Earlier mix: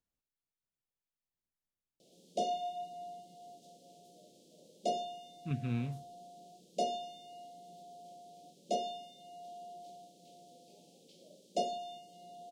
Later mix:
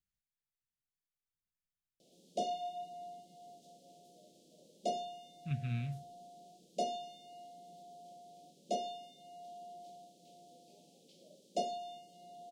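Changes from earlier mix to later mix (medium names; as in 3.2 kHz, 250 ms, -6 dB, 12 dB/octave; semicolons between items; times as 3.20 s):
speech: add high-order bell 530 Hz -16 dB 2.3 oct; reverb: off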